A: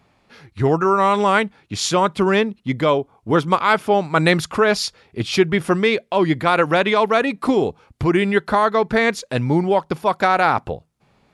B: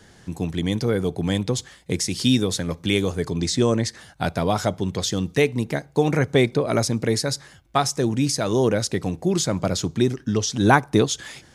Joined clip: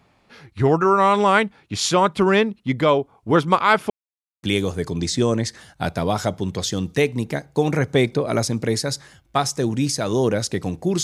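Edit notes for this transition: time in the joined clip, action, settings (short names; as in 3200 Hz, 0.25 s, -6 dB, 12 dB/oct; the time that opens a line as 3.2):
A
3.9–4.43 mute
4.43 switch to B from 2.83 s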